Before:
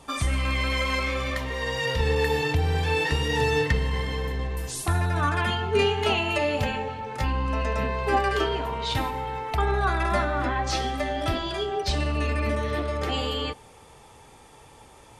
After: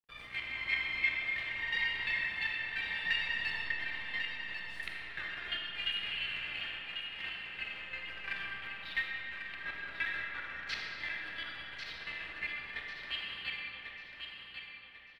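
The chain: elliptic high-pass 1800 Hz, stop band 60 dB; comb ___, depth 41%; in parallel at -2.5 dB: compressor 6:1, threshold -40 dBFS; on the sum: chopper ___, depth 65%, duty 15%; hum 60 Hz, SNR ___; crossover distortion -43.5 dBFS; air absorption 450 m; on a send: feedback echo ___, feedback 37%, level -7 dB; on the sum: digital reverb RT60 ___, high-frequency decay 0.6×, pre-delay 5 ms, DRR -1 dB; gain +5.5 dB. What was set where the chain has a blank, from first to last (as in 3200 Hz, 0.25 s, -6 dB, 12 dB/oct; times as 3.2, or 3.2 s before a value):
4.3 ms, 2.9 Hz, 26 dB, 1.094 s, 3.4 s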